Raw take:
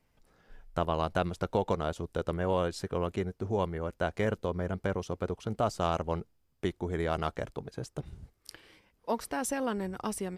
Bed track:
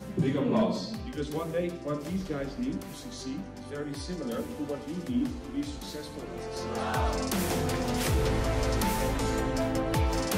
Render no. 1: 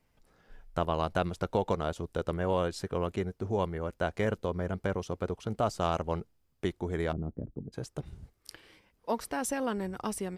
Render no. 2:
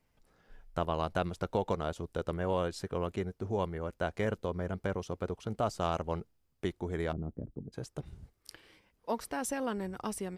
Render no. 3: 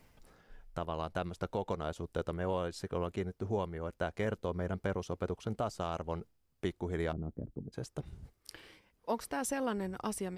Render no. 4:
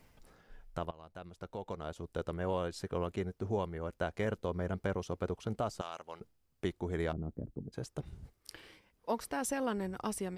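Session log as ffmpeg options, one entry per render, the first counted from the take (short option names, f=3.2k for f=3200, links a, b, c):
-filter_complex "[0:a]asplit=3[a][b][c];[a]afade=t=out:st=7.11:d=0.02[d];[b]lowpass=f=260:t=q:w=1.7,afade=t=in:st=7.11:d=0.02,afade=t=out:st=7.72:d=0.02[e];[c]afade=t=in:st=7.72:d=0.02[f];[d][e][f]amix=inputs=3:normalize=0"
-af "volume=-2.5dB"
-af "alimiter=limit=-22.5dB:level=0:latency=1:release=471,areverse,acompressor=mode=upward:threshold=-47dB:ratio=2.5,areverse"
-filter_complex "[0:a]asettb=1/sr,asplit=3[a][b][c];[a]atrim=end=5.814[d];[b]atrim=start=5.81:end=6.21,asetpts=PTS-STARTPTS,afade=t=in:d=0.004:c=qsin,afade=t=out:st=0.396:d=0.004:c=qsin,highpass=f=1.5k:p=1[e];[c]atrim=start=6.206[f];[d][e]acrossfade=d=0.004:c1=hsin:c2=qsin[g];[g][f]acrossfade=d=0.004:c1=qsin:c2=hsin,asplit=2[h][i];[h]atrim=end=0.91,asetpts=PTS-STARTPTS,afade=t=out:st=0.906:d=0.004:c=hsin:silence=0.1[j];[i]atrim=start=0.91,asetpts=PTS-STARTPTS,afade=t=in:d=1.63:silence=0.1[k];[j][k]concat=n=2:v=0:a=1"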